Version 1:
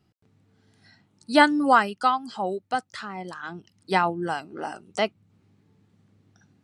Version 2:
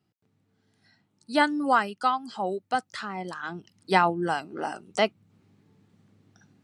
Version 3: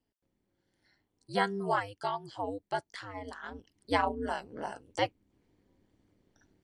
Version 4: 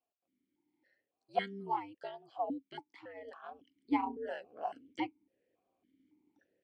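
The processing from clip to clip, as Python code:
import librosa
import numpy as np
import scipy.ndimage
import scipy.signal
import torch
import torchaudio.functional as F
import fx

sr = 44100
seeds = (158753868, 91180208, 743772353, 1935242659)

y1 = scipy.signal.sosfilt(scipy.signal.butter(2, 100.0, 'highpass', fs=sr, output='sos'), x)
y1 = fx.rider(y1, sr, range_db=4, speed_s=2.0)
y1 = y1 * librosa.db_to_amplitude(-2.5)
y2 = fx.notch_comb(y1, sr, f0_hz=1300.0)
y2 = y2 * np.sin(2.0 * np.pi * 100.0 * np.arange(len(y2)) / sr)
y2 = y2 * librosa.db_to_amplitude(-3.5)
y3 = fx.vowel_held(y2, sr, hz=3.6)
y3 = y3 * librosa.db_to_amplitude(6.0)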